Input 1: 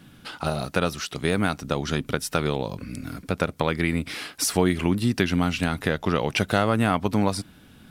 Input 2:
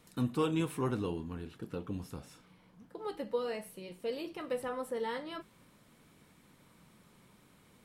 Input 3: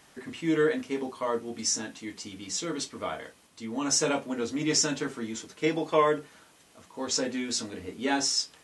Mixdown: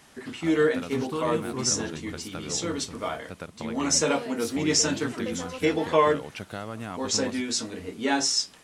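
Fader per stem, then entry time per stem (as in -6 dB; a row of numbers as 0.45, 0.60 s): -14.5, -0.5, +2.5 dB; 0.00, 0.75, 0.00 s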